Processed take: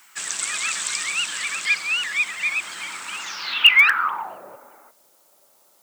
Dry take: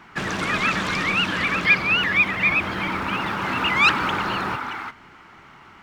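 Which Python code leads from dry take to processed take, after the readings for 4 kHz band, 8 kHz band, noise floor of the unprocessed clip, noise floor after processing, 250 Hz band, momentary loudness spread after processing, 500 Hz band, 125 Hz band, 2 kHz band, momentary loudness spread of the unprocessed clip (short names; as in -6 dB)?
+4.5 dB, +14.0 dB, -48 dBFS, -59 dBFS, under -20 dB, 17 LU, under -10 dB, under -25 dB, 0.0 dB, 10 LU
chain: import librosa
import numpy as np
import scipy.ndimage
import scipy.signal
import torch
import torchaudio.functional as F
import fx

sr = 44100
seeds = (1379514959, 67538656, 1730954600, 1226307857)

y = fx.filter_sweep_lowpass(x, sr, from_hz=8000.0, to_hz=570.0, start_s=3.18, end_s=4.41, q=7.7)
y = fx.quant_dither(y, sr, seeds[0], bits=10, dither='none')
y = np.diff(y, prepend=0.0)
y = F.gain(torch.from_numpy(y), 5.0).numpy()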